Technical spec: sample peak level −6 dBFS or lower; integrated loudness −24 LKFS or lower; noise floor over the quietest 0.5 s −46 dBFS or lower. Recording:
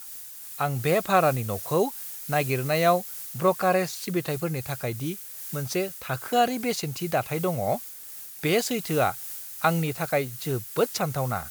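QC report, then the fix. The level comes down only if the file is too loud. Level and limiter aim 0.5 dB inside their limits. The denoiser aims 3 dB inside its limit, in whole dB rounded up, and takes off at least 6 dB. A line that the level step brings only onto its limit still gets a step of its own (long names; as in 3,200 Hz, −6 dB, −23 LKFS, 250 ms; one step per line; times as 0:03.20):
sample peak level −7.0 dBFS: in spec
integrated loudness −26.5 LKFS: in spec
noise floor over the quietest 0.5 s −41 dBFS: out of spec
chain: broadband denoise 8 dB, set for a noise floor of −41 dBFS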